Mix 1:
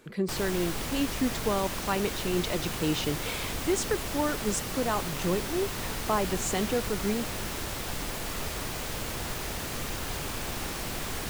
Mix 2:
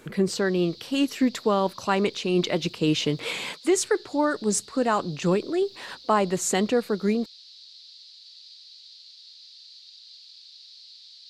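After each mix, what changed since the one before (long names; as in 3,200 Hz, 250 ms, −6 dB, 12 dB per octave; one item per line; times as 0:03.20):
speech +6.0 dB
background: add flat-topped band-pass 4,300 Hz, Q 4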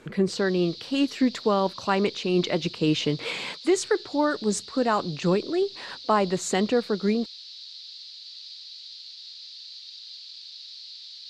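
background +7.5 dB
master: add high-frequency loss of the air 56 metres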